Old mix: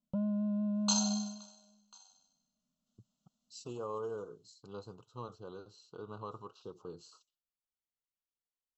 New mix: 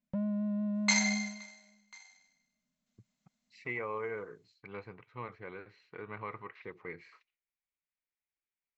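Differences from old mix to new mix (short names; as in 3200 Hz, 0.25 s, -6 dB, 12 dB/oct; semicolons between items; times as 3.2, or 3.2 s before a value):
speech: add synth low-pass 2200 Hz, resonance Q 3.8; master: remove elliptic band-stop 1400–2800 Hz, stop band 50 dB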